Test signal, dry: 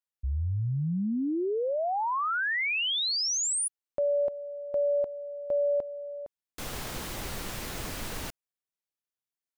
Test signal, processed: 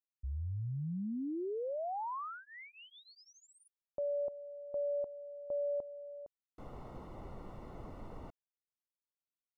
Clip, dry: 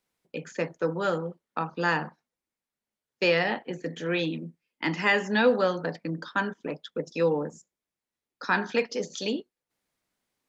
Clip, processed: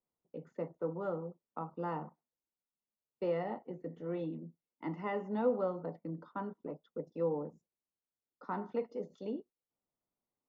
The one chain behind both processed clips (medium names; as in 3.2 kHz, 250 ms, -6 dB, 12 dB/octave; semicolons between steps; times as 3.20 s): Savitzky-Golay filter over 65 samples; trim -9 dB